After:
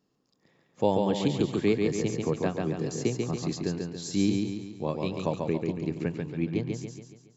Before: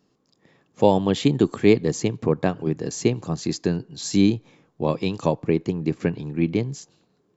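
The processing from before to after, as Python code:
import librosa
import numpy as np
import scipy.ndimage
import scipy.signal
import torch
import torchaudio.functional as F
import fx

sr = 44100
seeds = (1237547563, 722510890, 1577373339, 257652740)

y = fx.echo_feedback(x, sr, ms=140, feedback_pct=48, wet_db=-4.0)
y = fx.band_squash(y, sr, depth_pct=40, at=(1.4, 3.63))
y = y * 10.0 ** (-8.0 / 20.0)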